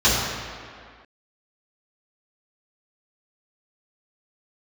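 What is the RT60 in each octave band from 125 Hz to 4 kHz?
1.6, 1.9, 1.9, 2.2, 2.1, 1.5 seconds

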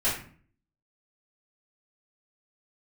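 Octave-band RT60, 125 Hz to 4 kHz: 0.70, 0.65, 0.50, 0.45, 0.45, 0.30 seconds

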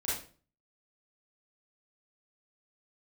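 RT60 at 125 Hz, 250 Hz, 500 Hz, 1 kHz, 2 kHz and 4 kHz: 0.60, 0.50, 0.45, 0.35, 0.35, 0.35 seconds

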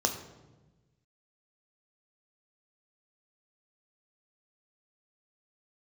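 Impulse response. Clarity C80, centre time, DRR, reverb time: 11.0 dB, 20 ms, 4.0 dB, 1.2 s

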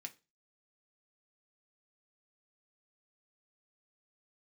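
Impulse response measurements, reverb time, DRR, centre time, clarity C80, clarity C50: 0.30 s, 4.0 dB, 6 ms, 26.5 dB, 19.5 dB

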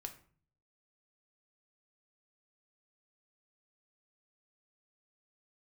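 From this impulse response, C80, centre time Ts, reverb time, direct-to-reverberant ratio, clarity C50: 16.5 dB, 10 ms, 0.45 s, 5.0 dB, 12.0 dB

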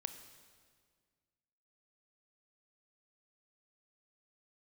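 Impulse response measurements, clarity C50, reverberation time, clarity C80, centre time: 10.0 dB, 1.8 s, 11.0 dB, 17 ms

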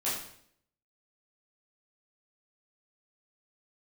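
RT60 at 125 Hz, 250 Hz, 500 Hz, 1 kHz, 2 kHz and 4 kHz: 0.75, 0.75, 0.65, 0.60, 0.60, 0.60 seconds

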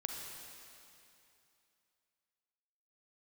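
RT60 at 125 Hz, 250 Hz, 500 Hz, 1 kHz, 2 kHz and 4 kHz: 2.8, 2.8, 2.7, 2.8, 2.7, 2.7 seconds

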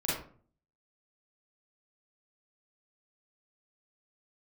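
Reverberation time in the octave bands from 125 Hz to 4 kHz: 0.70, 0.60, 0.50, 0.45, 0.35, 0.25 seconds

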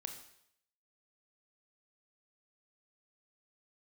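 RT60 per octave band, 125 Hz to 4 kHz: 0.75, 0.65, 0.70, 0.70, 0.70, 0.70 seconds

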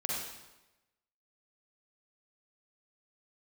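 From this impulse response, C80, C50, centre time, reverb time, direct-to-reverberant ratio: 1.5 dB, −2.0 dB, 79 ms, 1.0 s, −4.5 dB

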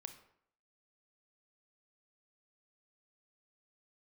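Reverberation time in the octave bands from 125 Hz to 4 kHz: 0.60, 0.65, 0.70, 0.65, 0.60, 0.45 seconds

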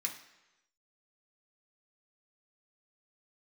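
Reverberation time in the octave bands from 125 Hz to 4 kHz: 0.90, 0.85, 1.0, 1.0, 1.0, 0.95 seconds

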